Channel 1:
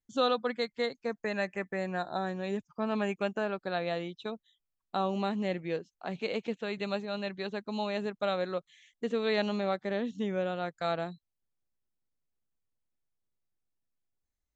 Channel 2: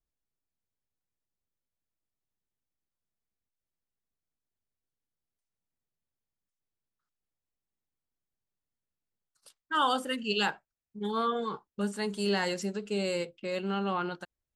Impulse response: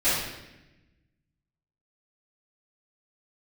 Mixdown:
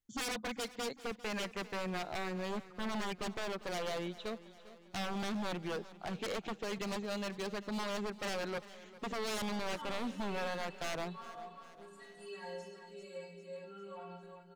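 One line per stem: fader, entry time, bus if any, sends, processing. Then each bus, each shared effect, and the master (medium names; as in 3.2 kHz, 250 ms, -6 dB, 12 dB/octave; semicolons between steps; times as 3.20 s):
-1.0 dB, 0.00 s, no send, echo send -17.5 dB, wavefolder -31.5 dBFS
-12.0 dB, 0.00 s, send -11 dB, echo send -4.5 dB, inharmonic resonator 82 Hz, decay 0.7 s, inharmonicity 0.03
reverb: on, RT60 1.0 s, pre-delay 3 ms
echo: feedback delay 399 ms, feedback 55%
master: none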